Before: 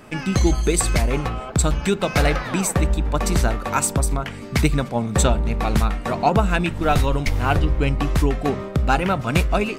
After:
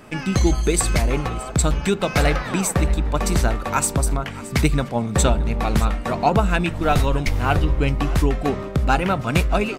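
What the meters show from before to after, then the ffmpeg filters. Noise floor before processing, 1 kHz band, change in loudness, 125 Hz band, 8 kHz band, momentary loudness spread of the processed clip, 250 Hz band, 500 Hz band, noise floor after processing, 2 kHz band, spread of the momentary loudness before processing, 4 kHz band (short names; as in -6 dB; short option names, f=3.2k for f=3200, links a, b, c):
-33 dBFS, 0.0 dB, 0.0 dB, 0.0 dB, 0.0 dB, 4 LU, 0.0 dB, 0.0 dB, -32 dBFS, 0.0 dB, 4 LU, 0.0 dB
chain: -af "aecho=1:1:621:0.126"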